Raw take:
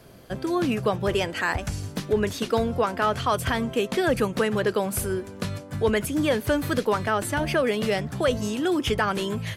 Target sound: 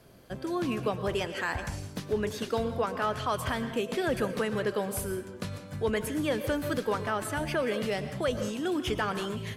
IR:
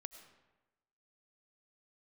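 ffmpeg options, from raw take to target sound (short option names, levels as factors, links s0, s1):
-filter_complex "[1:a]atrim=start_sample=2205,afade=t=out:st=0.25:d=0.01,atrim=end_sample=11466,asetrate=36603,aresample=44100[s0];[0:a][s0]afir=irnorm=-1:irlink=0,volume=0.794"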